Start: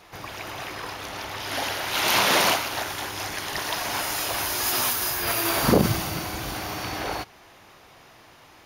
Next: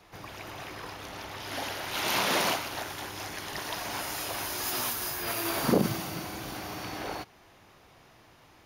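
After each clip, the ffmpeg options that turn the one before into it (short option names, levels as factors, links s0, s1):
-filter_complex "[0:a]lowshelf=f=350:g=6,acrossover=split=140|6300[s0][s1][s2];[s0]acompressor=threshold=0.00708:ratio=6[s3];[s3][s1][s2]amix=inputs=3:normalize=0,volume=0.422"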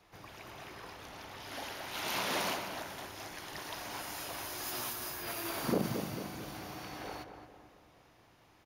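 -filter_complex "[0:a]asplit=2[s0][s1];[s1]adelay=223,lowpass=f=1500:p=1,volume=0.447,asplit=2[s2][s3];[s3]adelay=223,lowpass=f=1500:p=1,volume=0.54,asplit=2[s4][s5];[s5]adelay=223,lowpass=f=1500:p=1,volume=0.54,asplit=2[s6][s7];[s7]adelay=223,lowpass=f=1500:p=1,volume=0.54,asplit=2[s8][s9];[s9]adelay=223,lowpass=f=1500:p=1,volume=0.54,asplit=2[s10][s11];[s11]adelay=223,lowpass=f=1500:p=1,volume=0.54,asplit=2[s12][s13];[s13]adelay=223,lowpass=f=1500:p=1,volume=0.54[s14];[s0][s2][s4][s6][s8][s10][s12][s14]amix=inputs=8:normalize=0,volume=0.422"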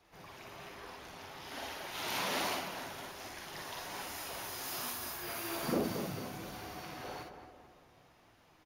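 -af "aecho=1:1:45|57:0.562|0.596,flanger=delay=2.5:depth=6:regen=-49:speed=1.2:shape=triangular,volume=1.12"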